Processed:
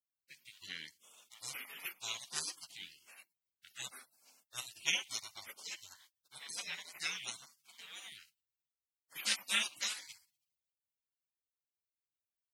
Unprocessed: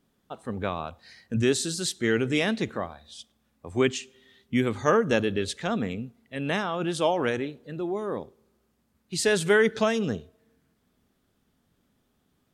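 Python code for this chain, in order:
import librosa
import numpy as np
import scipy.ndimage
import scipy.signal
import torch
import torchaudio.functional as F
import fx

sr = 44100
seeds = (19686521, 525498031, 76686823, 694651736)

y = scipy.signal.sosfilt(scipy.signal.butter(2, 1100.0, 'highpass', fs=sr, output='sos'), x)
y = fx.spec_gate(y, sr, threshold_db=-30, keep='weak')
y = fx.peak_eq(y, sr, hz=2900.0, db=11.0, octaves=1.8)
y = F.gain(torch.from_numpy(y), 9.5).numpy()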